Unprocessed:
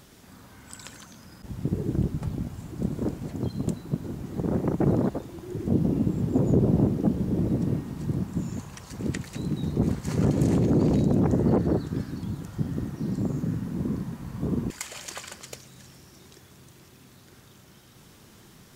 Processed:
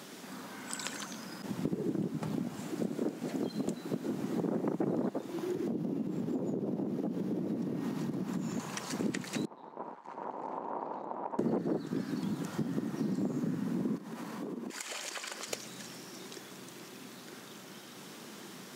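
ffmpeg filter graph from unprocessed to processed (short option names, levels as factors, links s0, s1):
-filter_complex "[0:a]asettb=1/sr,asplit=3[s0][s1][s2];[s0]atrim=end=2.604[s3];[s1]atrim=start=2.6:end=4.08,asetpts=PTS-STARTPTS,afade=t=in:d=0.004:c=qsin,afade=t=out:st=1.476:d=0.004:c=qsin,highpass=f=240:p=1,equalizer=f=1000:w=3.6:g=-4.5[s4];[s2]atrim=start=4.076[s5];[s3][s4]acrossfade=d=0.004:c1=hsin:c2=qsin[s6];[s6][s5]acrossfade=d=0.004:c1=qsin:c2=hsin,asettb=1/sr,asplit=3[s7][s8][s9];[s7]atrim=end=5.324[s10];[s8]atrim=start=5.32:end=8.6,asetpts=PTS-STARTPTS,afade=t=in:d=0.004:c=qsin,afade=t=out:st=3.276:d=0.004:c=qsin,equalizer=f=8200:w=5.5:g=-6.5,acompressor=threshold=0.0251:ratio=4:attack=3.2:release=140:knee=1:detection=peak[s11];[s9]atrim=start=8.596[s12];[s10][s11]acrossfade=d=0.004:c1=hsin:c2=qsin[s13];[s13][s12]acrossfade=d=0.004:c1=qsin:c2=hsin,asettb=1/sr,asplit=3[s14][s15][s16];[s14]atrim=end=9.454[s17];[s15]atrim=start=9.45:end=11.39,asetpts=PTS-STARTPTS,afade=t=in:d=0.004:c=qsin,afade=t=out:st=1.936:d=0.004:c=qsin,aeval=exprs='max(val(0),0)':c=same,bandpass=f=940:t=q:w=5.4[s18];[s16]atrim=start=11.386[s19];[s17][s18]acrossfade=d=0.004:c1=hsin:c2=qsin[s20];[s20][s19]acrossfade=d=0.004:c1=qsin:c2=hsin,asettb=1/sr,asplit=3[s21][s22][s23];[s21]atrim=end=13.974[s24];[s22]atrim=start=13.97:end=15.48,asetpts=PTS-STARTPTS,afade=t=in:d=0.004:c=qsin,afade=t=out:st=1.506:d=0.004:c=qsin,highpass=250,acompressor=threshold=0.00891:ratio=10:attack=3.2:release=140:knee=1:detection=peak[s25];[s23]atrim=start=15.476[s26];[s24][s25]acrossfade=d=0.004:c1=hsin:c2=qsin[s27];[s27][s26]acrossfade=d=0.004:c1=qsin:c2=hsin,highpass=f=190:w=0.5412,highpass=f=190:w=1.3066,highshelf=f=9700:g=-6,acompressor=threshold=0.0126:ratio=4,volume=2.11"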